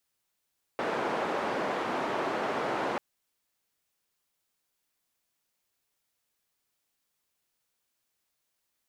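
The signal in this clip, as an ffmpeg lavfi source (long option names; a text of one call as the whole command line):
ffmpeg -f lavfi -i "anoisesrc=color=white:duration=2.19:sample_rate=44100:seed=1,highpass=frequency=270,lowpass=frequency=950,volume=-11.6dB" out.wav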